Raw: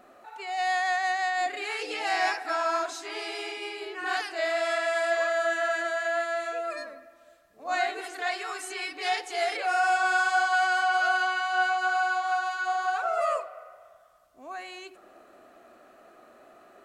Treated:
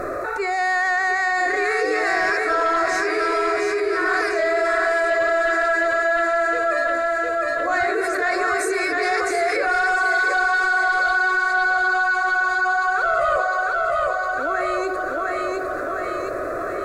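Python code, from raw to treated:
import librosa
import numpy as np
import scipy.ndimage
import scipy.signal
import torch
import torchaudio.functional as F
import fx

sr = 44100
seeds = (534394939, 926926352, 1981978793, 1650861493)

p1 = fx.high_shelf(x, sr, hz=5100.0, db=-9.5)
p2 = fx.fixed_phaser(p1, sr, hz=830.0, stages=6)
p3 = fx.fold_sine(p2, sr, drive_db=7, ceiling_db=-16.5)
p4 = p2 + (p3 * 10.0 ** (-10.0 / 20.0))
p5 = fx.low_shelf(p4, sr, hz=340.0, db=9.5)
p6 = p5 + fx.echo_feedback(p5, sr, ms=707, feedback_pct=45, wet_db=-5.5, dry=0)
y = fx.env_flatten(p6, sr, amount_pct=70)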